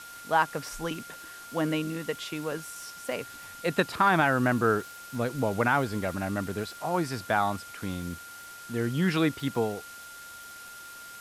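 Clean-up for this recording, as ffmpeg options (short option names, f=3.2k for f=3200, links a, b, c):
-af "adeclick=t=4,bandreject=f=1.4k:w=30,afftdn=nr=28:nf=-45"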